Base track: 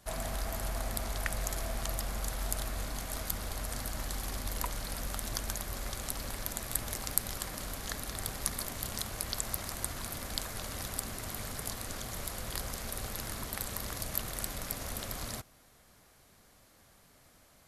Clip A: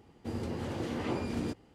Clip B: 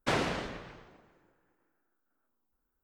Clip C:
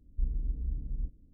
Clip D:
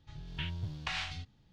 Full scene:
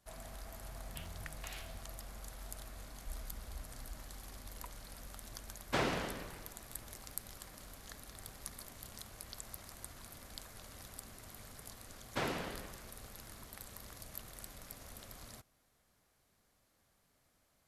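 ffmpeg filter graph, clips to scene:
ffmpeg -i bed.wav -i cue0.wav -i cue1.wav -i cue2.wav -i cue3.wav -filter_complex "[2:a]asplit=2[link_01][link_02];[0:a]volume=-13dB[link_03];[4:a]acrusher=bits=6:mode=log:mix=0:aa=0.000001,atrim=end=1.52,asetpts=PTS-STARTPTS,volume=-13.5dB,afade=type=in:duration=0.004:curve=hsin,afade=type=out:start_time=1.516:duration=0.004:curve=hsin,adelay=570[link_04];[3:a]atrim=end=1.33,asetpts=PTS-STARTPTS,volume=-15dB,afade=type=in:duration=0.004:curve=hsin,afade=type=out:start_time=1.326:duration=0.004:curve=hsin,adelay=2880[link_05];[link_01]atrim=end=2.83,asetpts=PTS-STARTPTS,volume=-4dB,afade=type=in:duration=0.004:curve=hsin,afade=type=out:start_time=2.826:duration=0.004:curve=hsin,adelay=5660[link_06];[link_02]atrim=end=2.83,asetpts=PTS-STARTPTS,volume=-7.5dB,afade=type=in:duration=0.004:curve=hsin,afade=type=out:start_time=2.826:duration=0.004:curve=hsin,adelay=12090[link_07];[link_03][link_04][link_05][link_06][link_07]amix=inputs=5:normalize=0" out.wav

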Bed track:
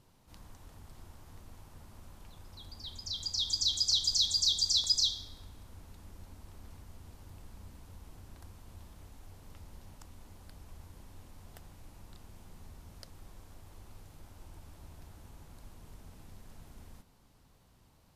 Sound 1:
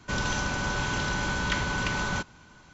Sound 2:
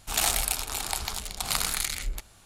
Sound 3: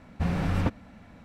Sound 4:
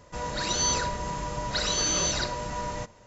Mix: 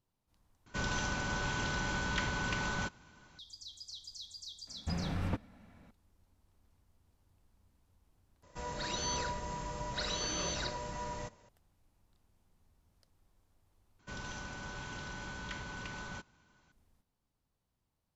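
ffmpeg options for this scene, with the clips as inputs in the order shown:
ffmpeg -i bed.wav -i cue0.wav -i cue1.wav -i cue2.wav -i cue3.wav -filter_complex "[1:a]asplit=2[link_01][link_02];[0:a]volume=-19.5dB[link_03];[4:a]acrossover=split=5100[link_04][link_05];[link_05]acompressor=threshold=-39dB:ratio=4:attack=1:release=60[link_06];[link_04][link_06]amix=inputs=2:normalize=0[link_07];[link_03]asplit=4[link_08][link_09][link_10][link_11];[link_08]atrim=end=0.664[link_12];[link_01]atrim=end=2.73,asetpts=PTS-STARTPTS,volume=-6.5dB[link_13];[link_09]atrim=start=3.386:end=8.434[link_14];[link_07]atrim=end=3.06,asetpts=PTS-STARTPTS,volume=-8dB[link_15];[link_10]atrim=start=11.486:end=13.994[link_16];[link_02]atrim=end=2.73,asetpts=PTS-STARTPTS,volume=-15dB[link_17];[link_11]atrim=start=16.716[link_18];[3:a]atrim=end=1.24,asetpts=PTS-STARTPTS,volume=-9dB,afade=type=in:duration=0.004:curve=hsin,afade=type=out:start_time=1.236:duration=0.004:curve=hsin,adelay=4670[link_19];[link_12][link_13]acrossfade=duration=0.004:curve1=hsin:curve2=hsin[link_20];[link_20][link_14]acrossfade=duration=0.004:curve1=hsin:curve2=hsin[link_21];[link_21][link_15]acrossfade=duration=0.004:curve1=hsin:curve2=hsin[link_22];[link_22][link_16]acrossfade=duration=0.004:curve1=hsin:curve2=hsin[link_23];[link_23][link_17]acrossfade=duration=0.004:curve1=hsin:curve2=hsin[link_24];[link_24][link_18]acrossfade=duration=0.004:curve1=hsin:curve2=hsin[link_25];[link_25][link_19]amix=inputs=2:normalize=0" out.wav

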